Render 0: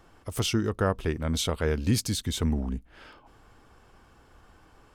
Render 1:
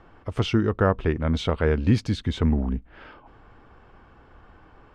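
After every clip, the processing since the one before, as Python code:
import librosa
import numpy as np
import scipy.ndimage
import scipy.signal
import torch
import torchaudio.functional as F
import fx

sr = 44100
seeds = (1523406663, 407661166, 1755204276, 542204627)

y = scipy.signal.sosfilt(scipy.signal.butter(2, 2500.0, 'lowpass', fs=sr, output='sos'), x)
y = y * librosa.db_to_amplitude(5.0)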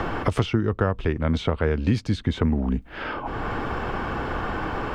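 y = fx.band_squash(x, sr, depth_pct=100)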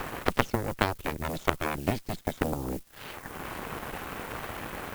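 y = fx.dmg_noise_colour(x, sr, seeds[0], colour='blue', level_db=-42.0)
y = fx.cheby_harmonics(y, sr, harmonics=(3, 5, 6, 8), levels_db=(-8, -32, -30, -21), full_scale_db=-6.5)
y = y * librosa.db_to_amplitude(3.0)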